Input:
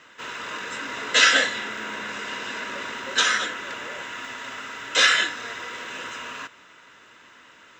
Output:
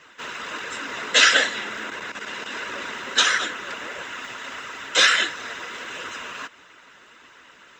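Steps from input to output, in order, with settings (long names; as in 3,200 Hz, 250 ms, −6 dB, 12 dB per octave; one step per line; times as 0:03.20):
flanger 1.5 Hz, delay 1.7 ms, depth 4.1 ms, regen −44%
harmonic and percussive parts rebalanced percussive +8 dB
0:01.90–0:02.52: output level in coarse steps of 11 dB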